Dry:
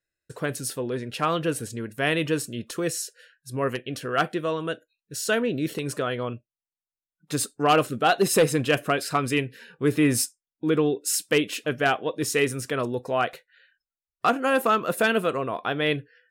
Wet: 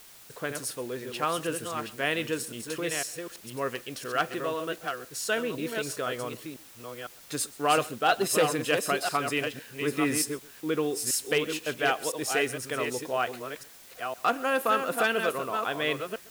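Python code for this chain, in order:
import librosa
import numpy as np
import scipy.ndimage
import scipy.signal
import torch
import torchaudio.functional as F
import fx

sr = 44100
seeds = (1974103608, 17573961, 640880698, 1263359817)

y = fx.reverse_delay(x, sr, ms=505, wet_db=-6.0)
y = fx.low_shelf(y, sr, hz=250.0, db=-10.5)
y = y + 10.0 ** (-22.0 / 20.0) * np.pad(y, (int(131 * sr / 1000.0), 0))[:len(y)]
y = fx.quant_dither(y, sr, seeds[0], bits=8, dither='triangular')
y = F.gain(torch.from_numpy(y), -3.0).numpy()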